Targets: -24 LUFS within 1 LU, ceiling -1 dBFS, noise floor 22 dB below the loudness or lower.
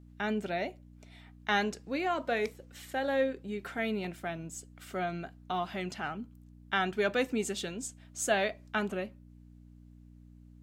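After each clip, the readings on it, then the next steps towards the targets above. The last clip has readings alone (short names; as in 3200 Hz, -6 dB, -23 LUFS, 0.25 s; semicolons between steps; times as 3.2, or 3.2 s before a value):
hum 60 Hz; harmonics up to 300 Hz; hum level -53 dBFS; loudness -33.5 LUFS; peak -14.5 dBFS; loudness target -24.0 LUFS
-> de-hum 60 Hz, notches 5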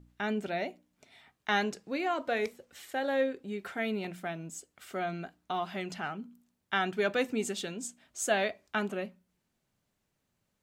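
hum none; loudness -33.5 LUFS; peak -15.0 dBFS; loudness target -24.0 LUFS
-> gain +9.5 dB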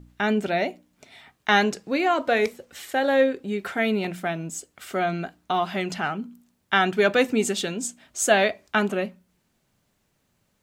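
loudness -24.5 LUFS; peak -5.5 dBFS; noise floor -71 dBFS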